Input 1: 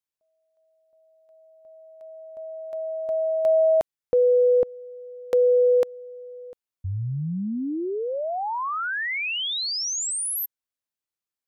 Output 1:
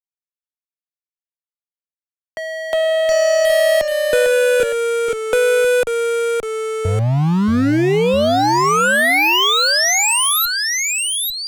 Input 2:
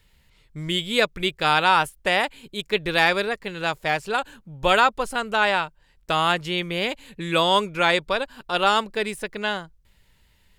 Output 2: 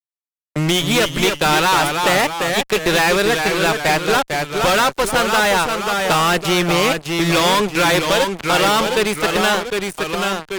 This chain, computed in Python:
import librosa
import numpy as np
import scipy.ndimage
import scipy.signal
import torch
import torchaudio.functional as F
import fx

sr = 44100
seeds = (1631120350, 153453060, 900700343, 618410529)

y = fx.fuzz(x, sr, gain_db=30.0, gate_db=-36.0)
y = fx.echo_pitch(y, sr, ms=223, semitones=-1, count=2, db_per_echo=-6.0)
y = fx.band_squash(y, sr, depth_pct=40)